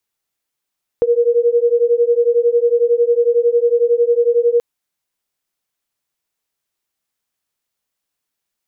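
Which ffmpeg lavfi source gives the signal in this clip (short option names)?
-f lavfi -i "aevalsrc='0.2*(sin(2*PI*469*t)+sin(2*PI*480*t))':d=3.58:s=44100"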